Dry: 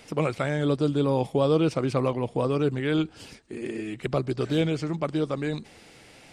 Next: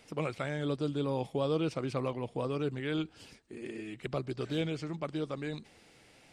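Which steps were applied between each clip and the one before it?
dynamic EQ 3000 Hz, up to +3 dB, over -46 dBFS, Q 0.72; gain -9 dB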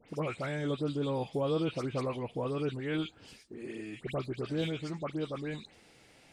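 dispersion highs, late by 91 ms, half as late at 2300 Hz

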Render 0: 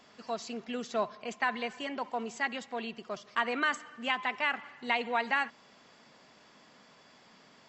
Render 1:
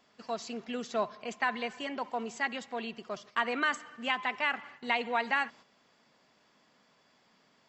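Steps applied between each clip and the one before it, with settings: gate -51 dBFS, range -8 dB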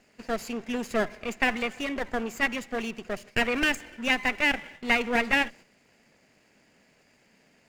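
minimum comb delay 0.43 ms; bell 4300 Hz -7 dB 0.41 oct; gain +6.5 dB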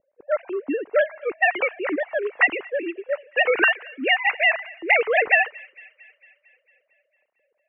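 sine-wave speech; low-pass opened by the level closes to 330 Hz, open at -20.5 dBFS; thin delay 0.226 s, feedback 62%, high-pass 2600 Hz, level -19 dB; gain +6 dB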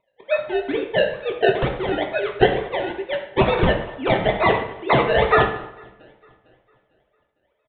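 decimation with a swept rate 27×, swing 100% 2.2 Hz; reverb RT60 0.80 s, pre-delay 4 ms, DRR 1 dB; downsampling 8000 Hz

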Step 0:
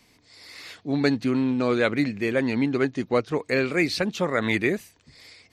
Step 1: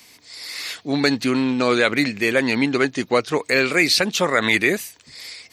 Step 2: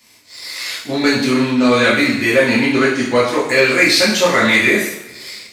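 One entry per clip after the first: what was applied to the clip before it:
tilt +2.5 dB/oct; in parallel at +3 dB: limiter -14.5 dBFS, peak gain reduction 8.5 dB
two-slope reverb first 0.68 s, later 2 s, DRR -8 dB; sample leveller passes 1; gain -6.5 dB

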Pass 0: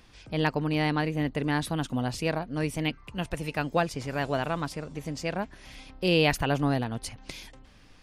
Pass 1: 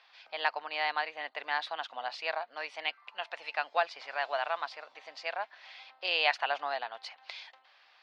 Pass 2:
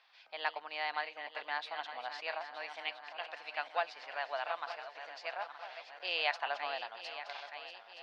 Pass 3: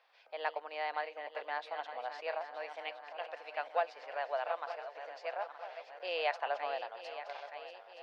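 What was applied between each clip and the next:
Chebyshev band-pass 700–4400 Hz, order 3
regenerating reverse delay 0.461 s, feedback 75%, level -10.5 dB; gain -5.5 dB
graphic EQ 125/500/4000 Hz -11/+12/-5 dB; gain -3 dB

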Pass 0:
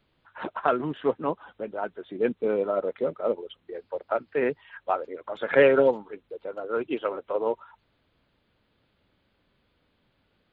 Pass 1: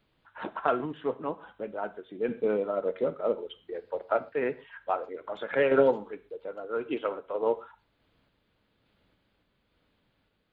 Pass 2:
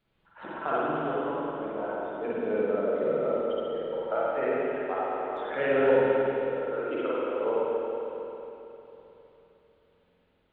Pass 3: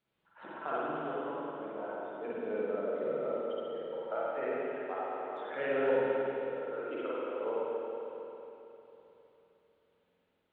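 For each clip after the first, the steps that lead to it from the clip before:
non-linear reverb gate 0.16 s falling, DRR 11.5 dB; random-step tremolo
spring tank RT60 3.4 s, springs 45/51 ms, chirp 50 ms, DRR -8.5 dB; gain -7 dB
HPF 170 Hz 6 dB/oct; gain -6.5 dB

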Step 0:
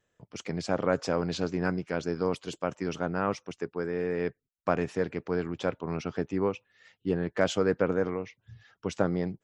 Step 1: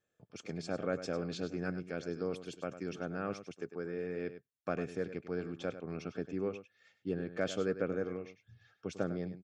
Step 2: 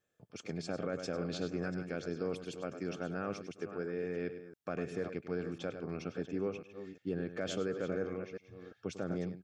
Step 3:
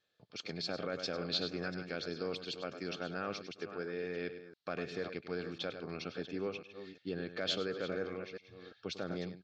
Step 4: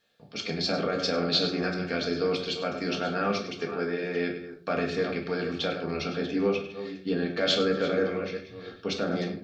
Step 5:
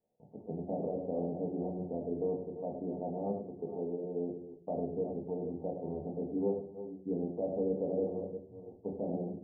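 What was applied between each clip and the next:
dynamic EQ 900 Hz, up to -6 dB, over -44 dBFS, Q 1.7; notch comb 970 Hz; echo 0.1 s -12 dB; gain -7 dB
reverse delay 0.349 s, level -12 dB; limiter -26.5 dBFS, peak gain reduction 6.5 dB; gain +1 dB
synth low-pass 4200 Hz, resonance Q 4.5; low shelf 460 Hz -6.5 dB; gain +1.5 dB
shoebox room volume 320 m³, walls furnished, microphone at 1.7 m; gain +8 dB
steep low-pass 930 Hz 96 dB/oct; gain -6.5 dB

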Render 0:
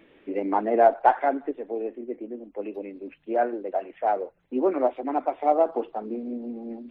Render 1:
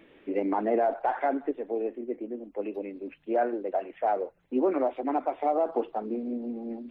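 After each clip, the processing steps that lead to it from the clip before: limiter -16.5 dBFS, peak gain reduction 11 dB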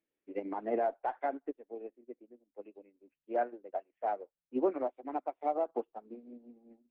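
upward expander 2.5:1, over -43 dBFS; gain -2.5 dB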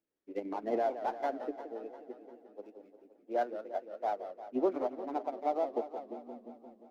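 median filter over 15 samples; warbling echo 0.175 s, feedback 68%, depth 192 cents, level -11 dB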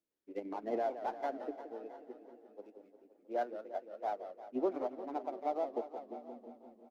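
echo 0.668 s -19.5 dB; gain -3.5 dB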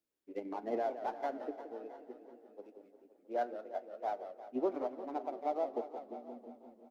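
reverb RT60 0.95 s, pre-delay 6 ms, DRR 15.5 dB

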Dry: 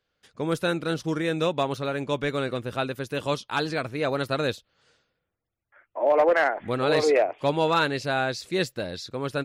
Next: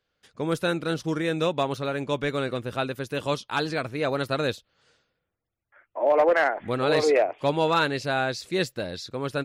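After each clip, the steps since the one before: nothing audible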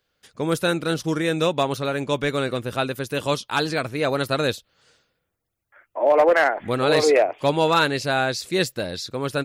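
high shelf 6900 Hz +8.5 dB; gain +3.5 dB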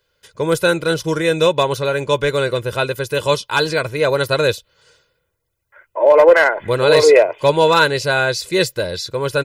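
comb 2 ms, depth 66%; gain +4 dB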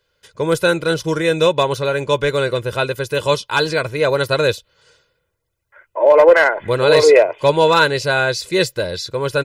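high shelf 12000 Hz -6.5 dB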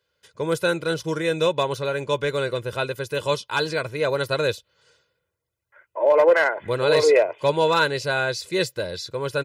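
HPF 69 Hz; gain -6.5 dB

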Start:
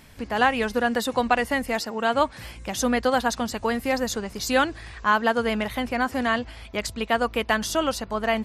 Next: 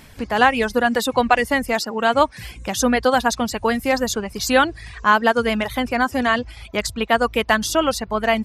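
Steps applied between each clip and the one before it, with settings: reverb removal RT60 0.56 s; gain +5.5 dB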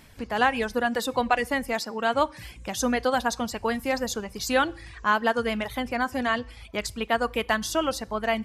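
reverb RT60 0.55 s, pre-delay 3 ms, DRR 19.5 dB; gain -7 dB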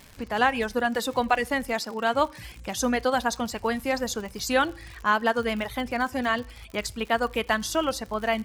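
crackle 110/s -34 dBFS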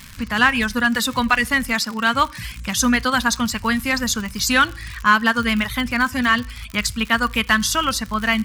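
band shelf 510 Hz -14 dB; in parallel at -7 dB: hard clip -22.5 dBFS, distortion -12 dB; on the sum: gain +7.5 dB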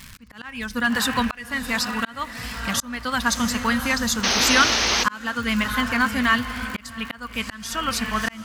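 diffused feedback echo 0.645 s, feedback 45%, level -10 dB; painted sound noise, 4.23–5.04, 220–6500 Hz -19 dBFS; auto swell 0.503 s; gain -2 dB

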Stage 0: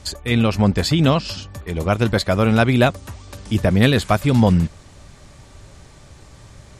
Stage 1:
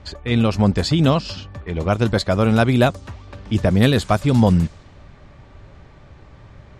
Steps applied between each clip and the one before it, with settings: low-pass opened by the level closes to 2400 Hz, open at -10 dBFS; dynamic EQ 2200 Hz, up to -4 dB, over -34 dBFS, Q 1.3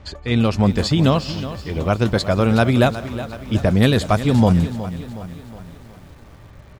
echo 0.169 s -24 dB; lo-fi delay 0.367 s, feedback 55%, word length 7-bit, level -13 dB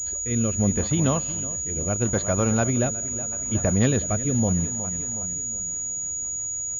rotary speaker horn 0.75 Hz, later 6.7 Hz, at 5.43; pulse-width modulation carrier 6800 Hz; gain -5.5 dB

